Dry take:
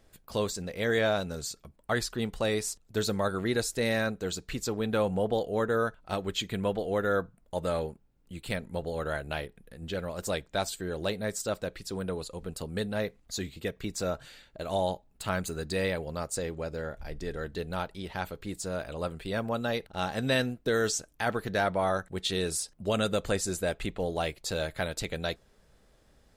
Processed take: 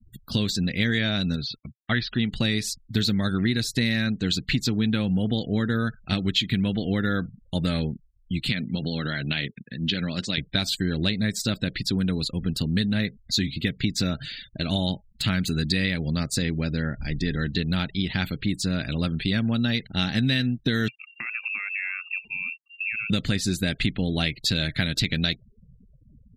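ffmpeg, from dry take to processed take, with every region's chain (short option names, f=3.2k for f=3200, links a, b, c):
-filter_complex "[0:a]asettb=1/sr,asplit=3[a][b][c];[a]atrim=end=1.364[d];[b]atrim=start=1.36:end=2.31,asetpts=PTS-STARTPTS,afade=t=in:d=0.004:c=qsin,afade=t=out:st=0.946:d=0.004:c=qsin,agate=range=-12dB:threshold=-54dB:ratio=16:release=100:detection=peak,lowpass=f=3.8k:w=0.5412,lowpass=f=3.8k:w=1.3066,lowshelf=f=430:g=-4.5[e];[c]atrim=start=2.306[f];[d][e]acrossfade=d=0.004:c1=hsin:c2=qsin[g];[g][f]acrossfade=d=0.004:c1=qsin:c2=hsin,asettb=1/sr,asplit=3[h][i][j];[h]atrim=end=8.494[k];[i]atrim=start=8.49:end=10.38,asetpts=PTS-STARTPTS,afade=t=in:d=0.004:c=qsin,afade=t=out:st=1.886:d=0.004:c=qsin,highshelf=f=3.3k:g=11,acompressor=threshold=-31dB:ratio=12:attack=3.2:release=140:knee=1:detection=peak,highpass=130,lowpass=4.7k[l];[j]atrim=start=10.376[m];[k][l]acrossfade=d=0.004:c1=hsin:c2=qsin[n];[n][m]acrossfade=d=0.004:c1=qsin:c2=hsin,asettb=1/sr,asplit=3[o][p][q];[o]atrim=end=20.884[r];[p]atrim=start=20.88:end=23.1,asetpts=PTS-STARTPTS,afade=t=in:d=0.004:c=qsin,afade=t=out:st=2.216:d=0.004:c=qsin,equalizer=f=590:t=o:w=0.92:g=-8.5,acompressor=threshold=-40dB:ratio=12:attack=3.2:release=140:knee=1:detection=peak,lowpass=f=2.4k:t=q:w=0.5098,lowpass=f=2.4k:t=q:w=0.6013,lowpass=f=2.4k:t=q:w=0.9,lowpass=f=2.4k:t=q:w=2.563,afreqshift=-2800[s];[q]atrim=start=23.096[t];[r][s]acrossfade=d=0.004:c1=hsin:c2=qsin[u];[u][t]acrossfade=d=0.004:c1=qsin:c2=hsin,afftfilt=real='re*gte(hypot(re,im),0.00282)':imag='im*gte(hypot(re,im),0.00282)':win_size=1024:overlap=0.75,equalizer=f=125:t=o:w=1:g=10,equalizer=f=250:t=o:w=1:g=10,equalizer=f=500:t=o:w=1:g=-9,equalizer=f=1k:t=o:w=1:g=-10,equalizer=f=2k:t=o:w=1:g=8,equalizer=f=4k:t=o:w=1:g=11,equalizer=f=8k:t=o:w=1:g=-6,acompressor=threshold=-27dB:ratio=6,volume=7dB"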